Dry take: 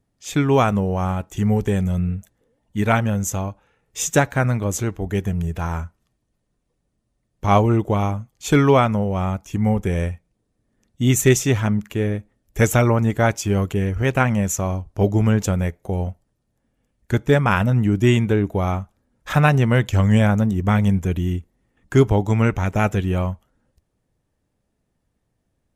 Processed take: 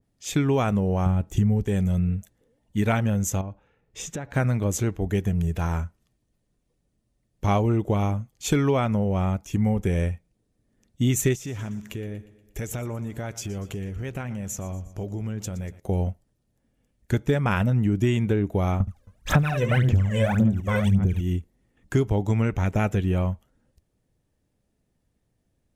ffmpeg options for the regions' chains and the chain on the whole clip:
-filter_complex "[0:a]asettb=1/sr,asplit=3[a][b][c];[a]atrim=end=1.064[d];[b]atrim=start=1.06:end=1.63,asetpts=PTS-STARTPTS,afade=t=in:d=0.004:c=qsin,afade=t=out:st=0.566:d=0.004:c=qsin,deesser=0.8,lowshelf=f=260:g=10[e];[c]atrim=start=1.626[f];[d][e]acrossfade=d=0.004:c1=hsin:c2=qsin[g];[g][f]acrossfade=d=0.004:c1=qsin:c2=hsin,asettb=1/sr,asplit=3[h][i][j];[h]atrim=end=3.414[k];[i]atrim=start=3.41:end=4.34,asetpts=PTS-STARTPTS,afade=t=in:d=0.004:c=qsin,afade=t=out:st=0.926:d=0.004:c=qsin,aemphasis=mode=reproduction:type=75kf,acompressor=threshold=-29dB:ratio=6:attack=3.2:release=140:knee=1:detection=peak[l];[j]atrim=start=4.336[m];[k][l]acrossfade=d=0.004:c1=hsin:c2=qsin[n];[n][m]acrossfade=d=0.004:c1=qsin:c2=hsin,asettb=1/sr,asplit=3[o][p][q];[o]atrim=end=11.354[r];[p]atrim=start=11.35:end=15.8,asetpts=PTS-STARTPTS,afade=t=in:d=0.004:c=qsin,afade=t=out:st=4.446:d=0.004:c=qsin,acompressor=threshold=-30dB:ratio=4:attack=3.2:release=140:knee=1:detection=peak,aecho=1:1:119|238|357|476|595:0.141|0.0749|0.0397|0.021|0.0111,atrim=end_sample=196245[s];[q]atrim=start=15.796[t];[r][s]acrossfade=d=0.004:c1=hsin:c2=qsin[u];[u][t]acrossfade=d=0.004:c1=qsin:c2=hsin,asettb=1/sr,asplit=3[v][w][x];[v]atrim=end=18.804[y];[w]atrim=start=18.8:end=21.21,asetpts=PTS-STARTPTS,afade=t=in:d=0.004:c=qsin,afade=t=out:st=2.406:d=0.004:c=qsin,aecho=1:1:72|270:0.398|0.168,atrim=end_sample=106281,aphaser=in_gain=1:out_gain=1:delay=2:decay=0.8:speed=1.8:type=sinusoidal[z];[x]atrim=start=21.206[aa];[y][z]acrossfade=d=0.004:c1=hsin:c2=qsin[ab];[ab][aa]acrossfade=d=0.004:c1=qsin:c2=hsin,equalizer=f=1.1k:t=o:w=1.4:g=-4.5,acompressor=threshold=-18dB:ratio=6,adynamicequalizer=threshold=0.00794:dfrequency=3000:dqfactor=0.7:tfrequency=3000:tqfactor=0.7:attack=5:release=100:ratio=0.375:range=2:mode=cutabove:tftype=highshelf"

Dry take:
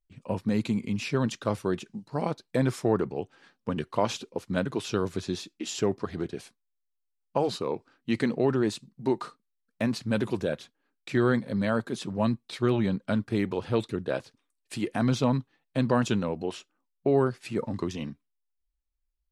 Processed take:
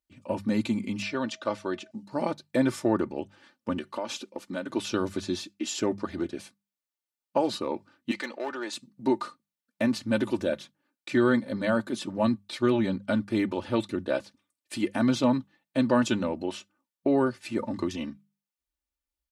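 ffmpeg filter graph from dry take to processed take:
-filter_complex "[0:a]asettb=1/sr,asplit=3[a][b][c];[a]atrim=end=1.024[d];[b]atrim=start=1.02:end=1.91,asetpts=PTS-STARTPTS,afade=t=in:d=0.004:c=qsin,afade=t=out:st=0.886:d=0.004:c=qsin,aeval=exprs='val(0)+0.00158*sin(2*PI*640*n/s)':c=same,lowpass=5.9k,lowshelf=f=260:g=-11.5[e];[c]atrim=start=1.906[f];[d][e]acrossfade=d=0.004:c1=hsin:c2=qsin[g];[g][f]acrossfade=d=0.004:c1=qsin:c2=hsin,asettb=1/sr,asplit=3[h][i][j];[h]atrim=end=3.774[k];[i]atrim=start=3.77:end=4.74,asetpts=PTS-STARTPTS,afade=t=in:d=0.004:c=qsin,afade=t=out:st=0.966:d=0.004:c=qsin,highpass=210,acompressor=threshold=-31dB:ratio=3:attack=3.2:release=140:knee=1:detection=peak[l];[j]atrim=start=4.736[m];[k][l]acrossfade=d=0.004:c1=hsin:c2=qsin[n];[n][m]acrossfade=d=0.004:c1=qsin:c2=hsin,asettb=1/sr,asplit=3[o][p][q];[o]atrim=end=8.114[r];[p]atrim=start=8.11:end=8.73,asetpts=PTS-STARTPTS,afade=t=in:d=0.004:c=qsin,afade=t=out:st=0.616:d=0.004:c=qsin,highpass=680,lowpass=6.9k,acompressor=mode=upward:threshold=-38dB:ratio=2.5:attack=3.2:release=140:knee=2.83:detection=peak,asoftclip=type=hard:threshold=-26dB[s];[q]atrim=start=8.726[t];[r][s]acrossfade=d=0.004:c1=hsin:c2=qsin[u];[u][t]acrossfade=d=0.004:c1=qsin:c2=hsin,highpass=79,bandreject=f=50:t=h:w=6,bandreject=f=100:t=h:w=6,bandreject=f=150:t=h:w=6,bandreject=f=200:t=h:w=6,aecho=1:1:3.4:0.62"

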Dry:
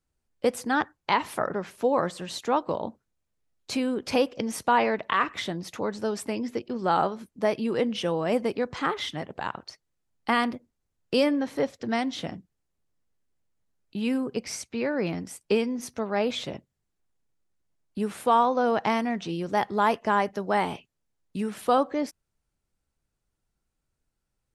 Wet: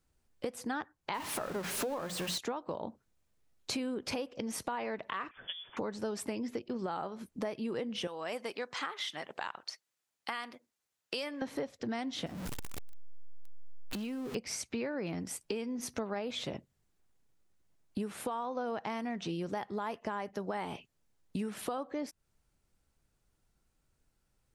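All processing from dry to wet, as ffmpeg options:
-filter_complex "[0:a]asettb=1/sr,asplit=3[a][b][c];[a]atrim=end=1.144[d];[b]atrim=start=1.14:end=2.38,asetpts=PTS-STARTPTS,afade=t=in:d=0.004:c=qsin,afade=t=out:st=1.236:d=0.004:c=qsin,aeval=exprs='val(0)+0.5*0.0316*sgn(val(0))':c=same,bandreject=f=60:t=h:w=6,bandreject=f=120:t=h:w=6,bandreject=f=180:t=h:w=6,bandreject=f=240:t=h:w=6,bandreject=f=300:t=h:w=6[e];[c]atrim=start=2.376[f];[d][e]acrossfade=d=0.004:c1=hsin:c2=qsin[g];[g][f]acrossfade=d=0.004:c1=qsin:c2=hsin,asettb=1/sr,asplit=3[h][i][j];[h]atrim=end=5.314[k];[i]atrim=start=5.31:end=5.77,asetpts=PTS-STARTPTS,afade=t=in:d=0.004:c=qsin,afade=t=out:st=0.456:d=0.004:c=qsin,aeval=exprs='val(0)+0.5*0.0141*sgn(val(0))':c=same,agate=range=-17dB:threshold=-27dB:ratio=16:release=100:detection=peak,lowpass=f=3.1k:t=q:w=0.5098,lowpass=f=3.1k:t=q:w=0.6013,lowpass=f=3.1k:t=q:w=0.9,lowpass=f=3.1k:t=q:w=2.563,afreqshift=-3600[l];[j]atrim=start=5.766[m];[k][l]acrossfade=d=0.004:c1=hsin:c2=qsin[n];[n][m]acrossfade=d=0.004:c1=qsin:c2=hsin,asettb=1/sr,asplit=3[o][p][q];[o]atrim=end=8.074[r];[p]atrim=start=8.07:end=11.42,asetpts=PTS-STARTPTS,afade=t=in:d=0.004:c=qsin,afade=t=out:st=3.346:d=0.004:c=qsin,deesser=0.35,highpass=f=1.4k:p=1[s];[q]atrim=start=11.416[t];[r][s]acrossfade=d=0.004:c1=hsin:c2=qsin[u];[u][t]acrossfade=d=0.004:c1=qsin:c2=hsin,asettb=1/sr,asplit=3[v][w][x];[v]atrim=end=12.264[y];[w]atrim=start=12.26:end=14.35,asetpts=PTS-STARTPTS,afade=t=in:d=0.004:c=qsin,afade=t=out:st=2.086:d=0.004:c=qsin,aeval=exprs='val(0)+0.5*0.0211*sgn(val(0))':c=same,acompressor=threshold=-40dB:ratio=5:attack=3.2:release=140:knee=1:detection=peak[z];[x]atrim=start=14.346[aa];[y][z]acrossfade=d=0.004:c1=hsin:c2=qsin[ab];[ab][aa]acrossfade=d=0.004:c1=qsin:c2=hsin,alimiter=limit=-20dB:level=0:latency=1:release=434,acompressor=threshold=-40dB:ratio=4,volume=4.5dB"

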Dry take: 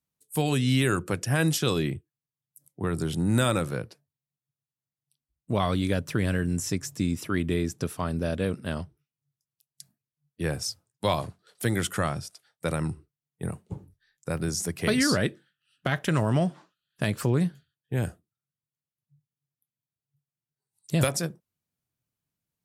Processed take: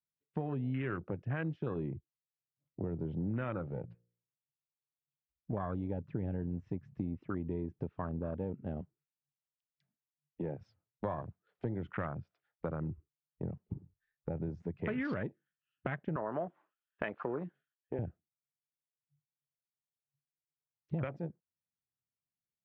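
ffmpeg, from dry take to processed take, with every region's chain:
-filter_complex "[0:a]asettb=1/sr,asplit=3[a][b][c];[a]atrim=end=3.624[d];[b]atrim=start=3.62:end=5.53,asetpts=PTS-STARTPTS,afade=t=in:d=0.004:c=qsin,afade=t=out:st=1.906:d=0.004:c=qsin,volume=25.5dB,asoftclip=hard,volume=-25.5dB,bandreject=f=58.67:t=h:w=4,bandreject=f=117.34:t=h:w=4,bandreject=f=176.01:t=h:w=4,bandreject=f=234.68:t=h:w=4,bandreject=f=293.35:t=h:w=4,bandreject=f=352.02:t=h:w=4,bandreject=f=410.69:t=h:w=4,bandreject=f=469.36:t=h:w=4,bandreject=f=528.03:t=h:w=4[e];[c]atrim=start=5.526[f];[d][e]acrossfade=d=0.004:c1=hsin:c2=qsin[g];[g][f]acrossfade=d=0.004:c1=qsin:c2=hsin,asettb=1/sr,asplit=3[h][i][j];[h]atrim=end=8.814[k];[i]atrim=start=8.81:end=10.61,asetpts=PTS-STARTPTS,afade=t=in:d=0.004:c=qsin,afade=t=out:st=1.796:d=0.004:c=qsin,highpass=160,volume=21dB,asoftclip=hard,volume=-21dB[l];[j]atrim=start=10.606[m];[k][l]acrossfade=d=0.004:c1=hsin:c2=qsin[n];[n][m]acrossfade=d=0.004:c1=qsin:c2=hsin,asettb=1/sr,asplit=3[o][p][q];[o]atrim=end=16.164[r];[p]atrim=start=16.16:end=17.99,asetpts=PTS-STARTPTS,afade=t=in:d=0.004:c=qsin,afade=t=out:st=1.826:d=0.004:c=qsin,acontrast=37,highpass=420,lowpass=3.8k[s];[q]atrim=start=17.986[t];[r][s]acrossfade=d=0.004:c1=hsin:c2=qsin[u];[u][t]acrossfade=d=0.004:c1=qsin:c2=hsin,afwtdn=0.0282,lowpass=f=2.6k:w=0.5412,lowpass=f=2.6k:w=1.3066,acompressor=threshold=-39dB:ratio=3,volume=1.5dB"

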